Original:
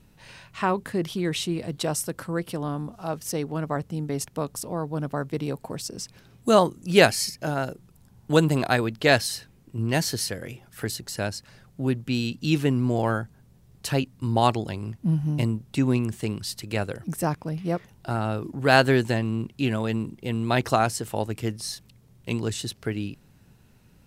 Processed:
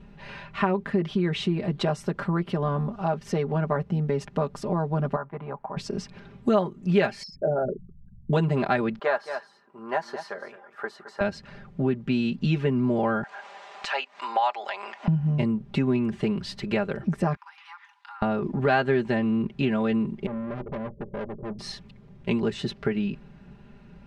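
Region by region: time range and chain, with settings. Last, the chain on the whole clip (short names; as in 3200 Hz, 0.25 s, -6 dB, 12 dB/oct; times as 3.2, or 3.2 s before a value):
5.16–5.77 LPF 1000 Hz + resonant low shelf 600 Hz -13.5 dB, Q 1.5
7.23–8.33 formant sharpening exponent 3 + LPF 9600 Hz
8.99–11.21 HPF 820 Hz + resonant high shelf 1700 Hz -12 dB, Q 1.5 + echo 0.217 s -14 dB
13.23–15.08 elliptic band-pass 720–8000 Hz, stop band 70 dB + upward compressor, threshold -29 dBFS
17.36–18.22 Chebyshev high-pass 840 Hz, order 8 + compressor 5:1, threshold -49 dBFS
20.26–21.59 Chebyshev low-pass 590 Hz, order 10 + tube stage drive 38 dB, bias 0.4
whole clip: LPF 2400 Hz 12 dB/oct; comb 5 ms, depth 84%; compressor 3:1, threshold -29 dBFS; gain +6 dB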